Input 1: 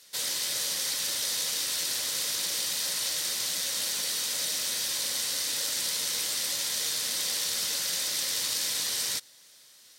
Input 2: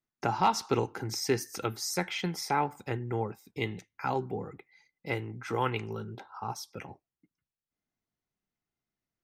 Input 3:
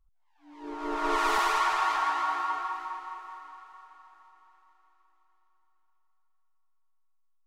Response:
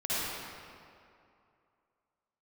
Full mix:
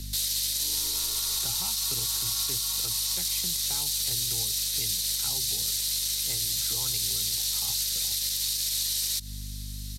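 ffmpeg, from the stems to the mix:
-filter_complex "[0:a]equalizer=frequency=7400:width=0.33:gain=9,aeval=exprs='val(0)+0.0158*(sin(2*PI*50*n/s)+sin(2*PI*2*50*n/s)/2+sin(2*PI*3*50*n/s)/3+sin(2*PI*4*50*n/s)/4+sin(2*PI*5*50*n/s)/5)':channel_layout=same,volume=1dB[link_01];[1:a]adelay=1200,volume=-4dB[link_02];[2:a]alimiter=level_in=1dB:limit=-24dB:level=0:latency=1,volume=-1dB,volume=2.5dB[link_03];[link_01][link_03]amix=inputs=2:normalize=0,equalizer=frequency=400:width_type=o:width=0.33:gain=5,equalizer=frequency=2500:width_type=o:width=0.33:gain=3,equalizer=frequency=4000:width_type=o:width=0.33:gain=6,equalizer=frequency=12500:width_type=o:width=0.33:gain=10,alimiter=limit=-18dB:level=0:latency=1:release=152,volume=0dB[link_04];[link_02][link_04]amix=inputs=2:normalize=0,acrossover=split=140|3000[link_05][link_06][link_07];[link_06]acompressor=threshold=-49dB:ratio=3[link_08];[link_05][link_08][link_07]amix=inputs=3:normalize=0"

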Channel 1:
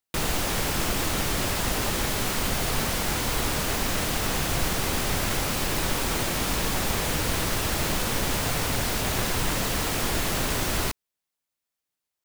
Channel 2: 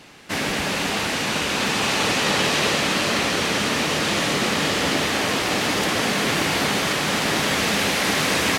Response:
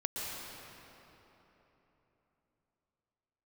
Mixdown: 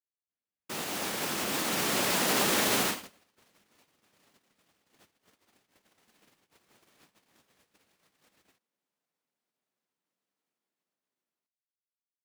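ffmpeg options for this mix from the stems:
-filter_complex "[0:a]alimiter=limit=-22.5dB:level=0:latency=1:release=140,highpass=frequency=180:width=0.5412,highpass=frequency=180:width=1.3066,adelay=550,volume=-2.5dB,afade=type=out:start_time=2.68:duration=0.46:silence=0.316228[link_01];[1:a]equalizer=frequency=92:width_type=o:width=0.4:gain=6,volume=32.5dB,asoftclip=hard,volume=-32.5dB,volume=-13dB[link_02];[link_01][link_02]amix=inputs=2:normalize=0,agate=range=-55dB:threshold=-38dB:ratio=16:detection=peak,dynaudnorm=framelen=350:gausssize=11:maxgain=11.5dB"

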